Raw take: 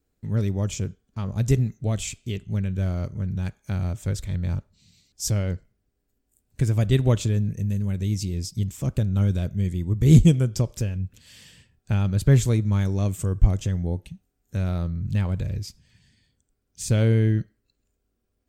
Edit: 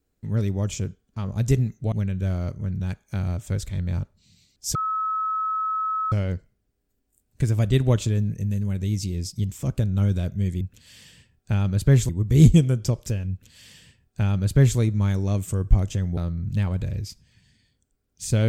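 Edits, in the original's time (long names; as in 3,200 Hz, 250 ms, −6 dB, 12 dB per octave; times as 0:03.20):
0:01.92–0:02.48: remove
0:05.31: insert tone 1,290 Hz −22.5 dBFS 1.37 s
0:11.01–0:12.49: duplicate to 0:09.80
0:13.88–0:14.75: remove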